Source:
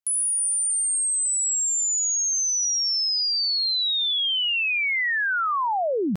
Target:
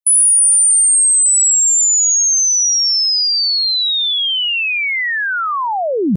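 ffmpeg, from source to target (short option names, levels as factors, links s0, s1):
-af "lowshelf=f=250:g=10,afftdn=nr=16:nf=-32,highshelf=f=6500:g=12,volume=1.68"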